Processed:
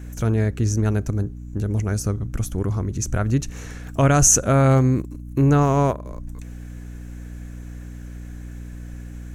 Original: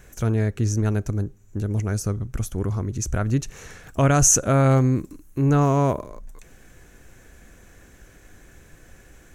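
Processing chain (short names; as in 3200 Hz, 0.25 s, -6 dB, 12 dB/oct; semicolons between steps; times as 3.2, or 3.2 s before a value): 4.99–6.06 transient shaper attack +4 dB, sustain -11 dB; hum 60 Hz, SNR 13 dB; gain +1.5 dB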